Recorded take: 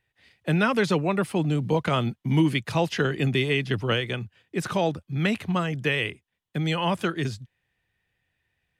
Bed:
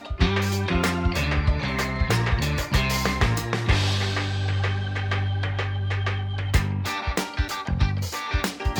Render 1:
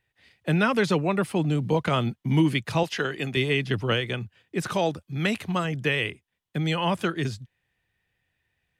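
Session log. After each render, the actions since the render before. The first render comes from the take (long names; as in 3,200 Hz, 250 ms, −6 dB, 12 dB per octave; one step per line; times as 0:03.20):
0:02.83–0:03.37: low-shelf EQ 280 Hz −11.5 dB
0:04.70–0:05.65: bass and treble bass −3 dB, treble +4 dB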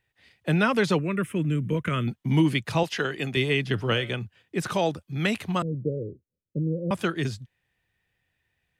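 0:00.99–0:02.08: phaser with its sweep stopped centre 1,900 Hz, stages 4
0:03.73–0:04.15: hum removal 141.3 Hz, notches 40
0:05.62–0:06.91: Chebyshev low-pass filter 580 Hz, order 8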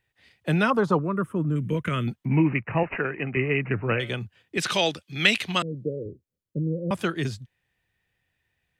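0:00.70–0:01.56: high shelf with overshoot 1,600 Hz −11 dB, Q 3
0:02.25–0:04.00: bad sample-rate conversion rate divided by 8×, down none, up filtered
0:04.57–0:06.06: meter weighting curve D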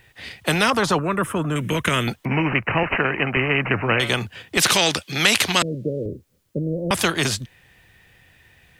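in parallel at 0 dB: brickwall limiter −15 dBFS, peak gain reduction 11.5 dB
on the sum: every bin compressed towards the loudest bin 2 to 1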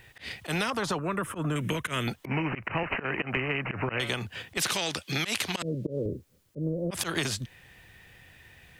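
volume swells 129 ms
downward compressor 10 to 1, threshold −26 dBFS, peak gain reduction 12.5 dB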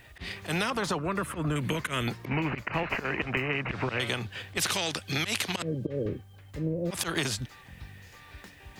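mix in bed −24 dB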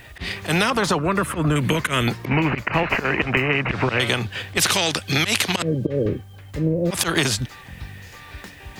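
level +9.5 dB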